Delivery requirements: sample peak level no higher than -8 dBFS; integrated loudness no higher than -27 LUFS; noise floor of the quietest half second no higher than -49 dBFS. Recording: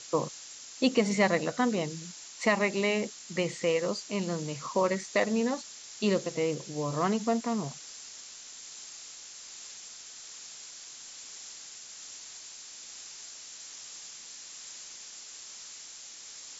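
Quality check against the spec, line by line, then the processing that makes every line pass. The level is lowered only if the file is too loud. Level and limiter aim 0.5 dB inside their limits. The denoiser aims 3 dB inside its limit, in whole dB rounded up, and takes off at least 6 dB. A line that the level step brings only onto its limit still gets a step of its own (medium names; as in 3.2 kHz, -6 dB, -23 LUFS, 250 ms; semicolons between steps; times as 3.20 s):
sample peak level -11.5 dBFS: pass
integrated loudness -32.0 LUFS: pass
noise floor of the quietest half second -47 dBFS: fail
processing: noise reduction 6 dB, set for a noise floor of -47 dBFS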